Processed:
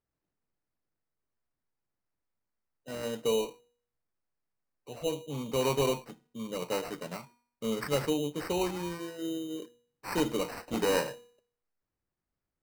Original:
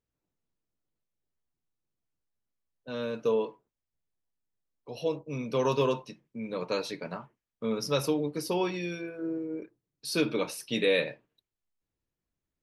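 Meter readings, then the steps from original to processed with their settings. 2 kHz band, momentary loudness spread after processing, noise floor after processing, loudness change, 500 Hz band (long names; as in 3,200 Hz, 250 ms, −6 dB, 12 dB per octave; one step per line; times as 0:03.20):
−3.5 dB, 14 LU, below −85 dBFS, −1.5 dB, −2.0 dB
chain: hum removal 239.9 Hz, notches 17
decimation without filtering 13×
level −1.5 dB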